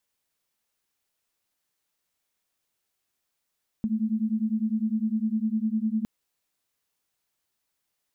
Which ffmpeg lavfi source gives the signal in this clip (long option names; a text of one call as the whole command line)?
ffmpeg -f lavfi -i "aevalsrc='0.0473*(sin(2*PI*214*t)+sin(2*PI*223.9*t))':duration=2.21:sample_rate=44100" out.wav